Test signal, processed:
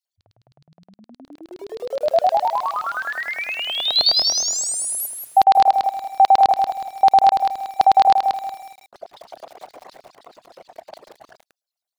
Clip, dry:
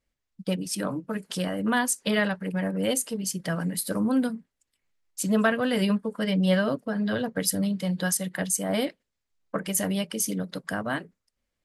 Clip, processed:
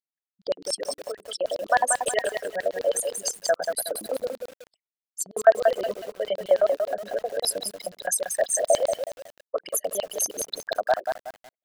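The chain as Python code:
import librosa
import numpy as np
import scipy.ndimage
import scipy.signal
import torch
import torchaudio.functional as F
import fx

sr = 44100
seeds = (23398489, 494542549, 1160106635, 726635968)

y = fx.envelope_sharpen(x, sr, power=3.0)
y = fx.filter_lfo_highpass(y, sr, shape='square', hz=9.6, low_hz=680.0, high_hz=4300.0, q=4.6)
y = fx.echo_crushed(y, sr, ms=184, feedback_pct=35, bits=7, wet_db=-5.5)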